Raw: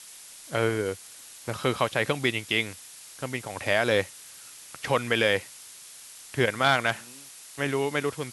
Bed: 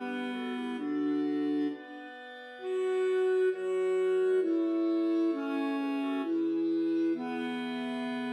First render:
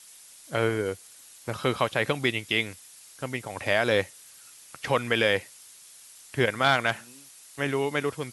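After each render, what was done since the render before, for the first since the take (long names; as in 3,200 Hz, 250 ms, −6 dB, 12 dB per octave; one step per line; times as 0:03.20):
broadband denoise 6 dB, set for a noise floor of −47 dBFS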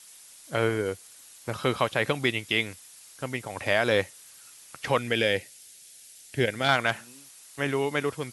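0:04.99–0:06.69: parametric band 1,100 Hz −14 dB 0.65 octaves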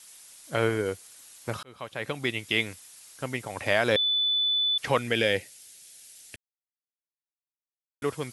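0:01.63–0:02.58: fade in
0:03.96–0:04.78: beep over 3,490 Hz −22 dBFS
0:06.36–0:08.02: silence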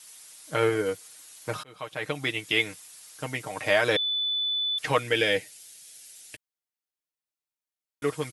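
low-shelf EQ 230 Hz −4.5 dB
comb filter 6.5 ms, depth 68%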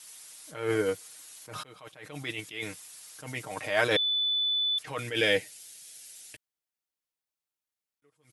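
level that may rise only so fast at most 110 dB per second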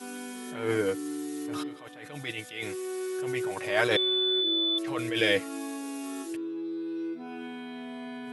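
mix in bed −5 dB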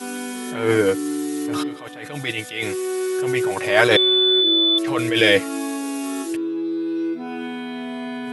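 level +10 dB
brickwall limiter −1 dBFS, peak gain reduction 1.5 dB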